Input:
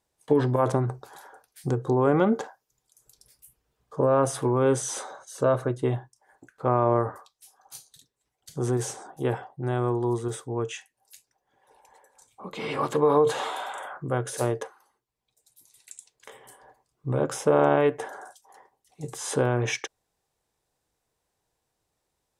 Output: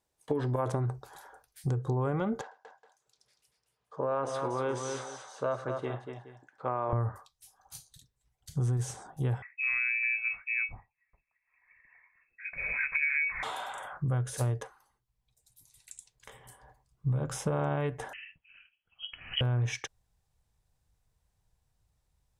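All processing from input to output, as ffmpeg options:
ffmpeg -i in.wav -filter_complex "[0:a]asettb=1/sr,asplit=3[link_01][link_02][link_03];[link_01]atrim=end=2.414[link_04];[link_02]atrim=start=2.41:end=6.93,asetpts=PTS-STARTPTS,afade=type=in:duration=0.004:curve=qsin,afade=type=out:start_time=4.516:duration=0.004:curve=qsin,highpass=370,lowpass=4400,aecho=1:1:103|238|421:0.119|0.447|0.15,atrim=end_sample=199332[link_05];[link_03]atrim=start=6.926[link_06];[link_04][link_05]acrossfade=duration=0.004:curve1=hsin:curve2=qsin[link_07];[link_07][link_06]acrossfade=duration=0.004:curve1=qsin:curve2=hsin,asettb=1/sr,asplit=3[link_08][link_09][link_10];[link_08]atrim=end=9.424[link_11];[link_09]atrim=start=9.42:end=13.43,asetpts=PTS-STARTPTS,afade=type=in:duration=0.004:curve=qsin,afade=type=out:start_time=4.006:duration=0.004:curve=qsin,tiltshelf=frequency=710:gain=4.5,lowpass=frequency=2300:width_type=q:width=0.5098,lowpass=frequency=2300:width_type=q:width=0.6013,lowpass=frequency=2300:width_type=q:width=0.9,lowpass=frequency=2300:width_type=q:width=2.563,afreqshift=-2700[link_12];[link_10]atrim=start=13.426[link_13];[link_11][link_12]acrossfade=duration=0.004:curve1=hsin:curve2=qsin[link_14];[link_14][link_13]acrossfade=duration=0.004:curve1=qsin:curve2=hsin,asettb=1/sr,asplit=3[link_15][link_16][link_17];[link_15]atrim=end=18.134[link_18];[link_16]atrim=start=18.13:end=19.41,asetpts=PTS-STARTPTS,afade=type=in:duration=0.004:curve=qsin,afade=type=out:start_time=1.276:duration=0.004:curve=qsin,lowshelf=frequency=140:gain=-11,lowpass=frequency=2900:width_type=q:width=0.5098,lowpass=frequency=2900:width_type=q:width=0.6013,lowpass=frequency=2900:width_type=q:width=0.9,lowpass=frequency=2900:width_type=q:width=2.563,afreqshift=-3400[link_19];[link_17]atrim=start=19.406[link_20];[link_18][link_19]acrossfade=duration=0.004:curve1=hsin:curve2=qsin[link_21];[link_21][link_20]acrossfade=duration=0.004:curve1=qsin:curve2=hsin,asubboost=boost=9.5:cutoff=110,acompressor=threshold=-23dB:ratio=6,volume=-3.5dB" out.wav

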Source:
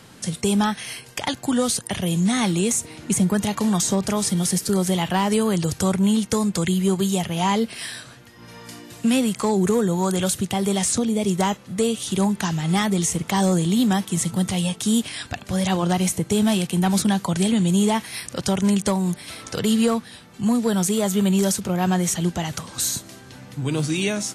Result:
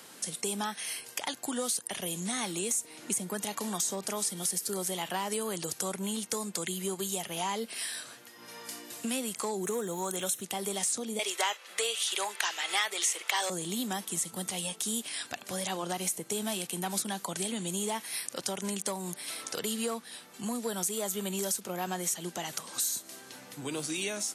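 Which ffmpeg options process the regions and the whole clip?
ffmpeg -i in.wav -filter_complex "[0:a]asettb=1/sr,asplit=3[link_01][link_02][link_03];[link_01]atrim=end=9.644[link_04];[link_02]atrim=start=9.64:end=10.42,asetpts=PTS-STARTPTS,afade=type=in:duration=0.004:curve=qsin,afade=type=out:start_time=0.776:duration=0.004:curve=qsin,acrusher=bits=8:mix=0:aa=0.5,asuperstop=centerf=4700:order=8:qfactor=6[link_05];[link_03]atrim=start=10.416[link_06];[link_04][link_05]acrossfade=duration=0.004:curve1=hsin:curve2=qsin[link_07];[link_07][link_06]acrossfade=duration=0.004:curve1=qsin:curve2=hsin,asettb=1/sr,asplit=3[link_08][link_09][link_10];[link_08]atrim=end=11.194[link_11];[link_09]atrim=start=11.19:end=13.5,asetpts=PTS-STARTPTS,afade=type=in:duration=0.004:curve=qsin,afade=type=out:start_time=2.306:duration=0.004:curve=qsin,highpass=frequency=400:width=0.5412,highpass=frequency=400:width=1.3066,equalizer=frequency=2400:width_type=o:width=2.6:gain=14[link_12];[link_10]atrim=start=13.496[link_13];[link_11][link_12]acrossfade=duration=0.004:curve1=hsin:curve2=qsin[link_14];[link_14][link_13]acrossfade=duration=0.004:curve1=qsin:curve2=hsin,highpass=320,highshelf=frequency=7800:gain=11.5,acompressor=threshold=-31dB:ratio=2,volume=-4dB" out.wav

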